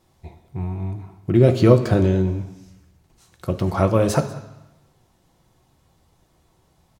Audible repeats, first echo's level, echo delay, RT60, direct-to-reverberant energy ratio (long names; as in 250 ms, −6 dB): 1, −20.0 dB, 191 ms, 0.95 s, 6.0 dB